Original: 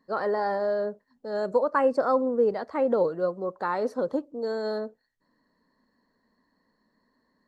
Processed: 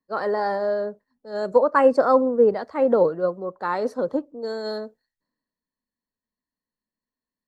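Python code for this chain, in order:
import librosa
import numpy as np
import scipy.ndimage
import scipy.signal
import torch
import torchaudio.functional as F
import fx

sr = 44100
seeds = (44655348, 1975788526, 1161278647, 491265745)

y = fx.band_widen(x, sr, depth_pct=70)
y = y * librosa.db_to_amplitude(4.0)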